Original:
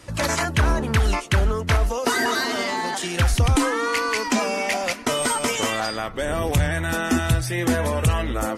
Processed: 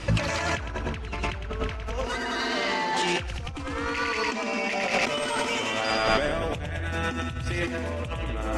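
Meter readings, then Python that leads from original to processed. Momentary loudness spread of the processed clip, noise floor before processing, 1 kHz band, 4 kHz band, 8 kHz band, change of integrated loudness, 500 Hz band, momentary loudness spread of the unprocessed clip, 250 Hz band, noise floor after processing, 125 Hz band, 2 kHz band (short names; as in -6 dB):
7 LU, -31 dBFS, -4.0 dB, -3.5 dB, -11.0 dB, -5.5 dB, -4.5 dB, 4 LU, -7.0 dB, -34 dBFS, -9.0 dB, -3.5 dB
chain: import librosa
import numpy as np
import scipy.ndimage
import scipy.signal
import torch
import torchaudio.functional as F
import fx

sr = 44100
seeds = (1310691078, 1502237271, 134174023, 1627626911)

p1 = scipy.signal.sosfilt(scipy.signal.butter(2, 5500.0, 'lowpass', fs=sr, output='sos'), x)
p2 = fx.add_hum(p1, sr, base_hz=50, snr_db=30)
p3 = fx.peak_eq(p2, sr, hz=2600.0, db=5.5, octaves=0.37)
p4 = p3 + fx.echo_feedback(p3, sr, ms=107, feedback_pct=57, wet_db=-4, dry=0)
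y = fx.over_compress(p4, sr, threshold_db=-29.0, ratio=-1.0)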